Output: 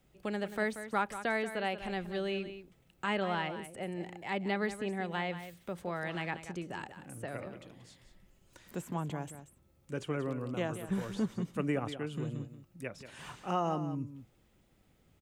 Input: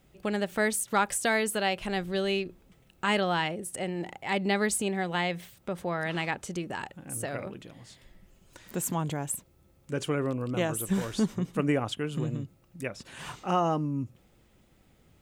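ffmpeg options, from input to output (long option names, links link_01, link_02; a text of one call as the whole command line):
ffmpeg -i in.wav -filter_complex "[0:a]acrossover=split=260|1300|3000[link_01][link_02][link_03][link_04];[link_04]acompressor=threshold=-47dB:ratio=6[link_05];[link_01][link_02][link_03][link_05]amix=inputs=4:normalize=0,aecho=1:1:183:0.266,volume=-6dB" out.wav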